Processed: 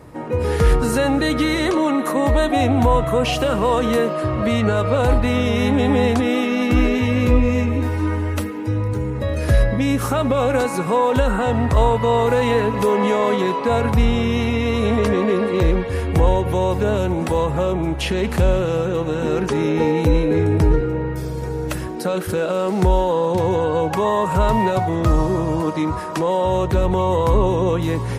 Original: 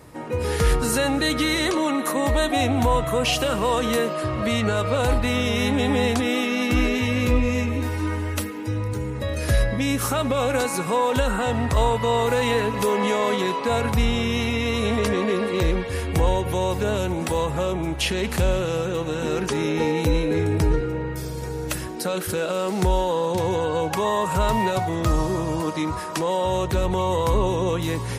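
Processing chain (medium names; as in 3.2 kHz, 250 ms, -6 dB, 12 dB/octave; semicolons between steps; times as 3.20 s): treble shelf 2.2 kHz -9.5 dB; trim +5 dB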